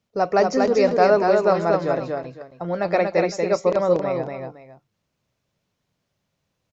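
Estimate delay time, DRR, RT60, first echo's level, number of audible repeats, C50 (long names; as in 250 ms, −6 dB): 237 ms, no reverb audible, no reverb audible, −3.5 dB, 2, no reverb audible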